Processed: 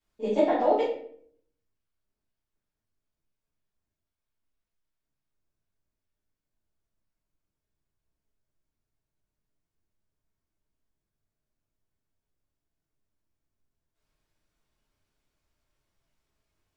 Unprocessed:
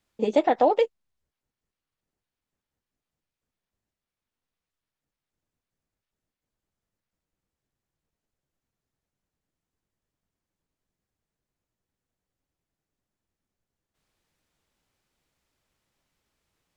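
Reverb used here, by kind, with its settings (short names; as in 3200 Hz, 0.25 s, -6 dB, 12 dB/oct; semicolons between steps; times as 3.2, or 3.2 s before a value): shoebox room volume 81 m³, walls mixed, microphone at 2.8 m; gain -14.5 dB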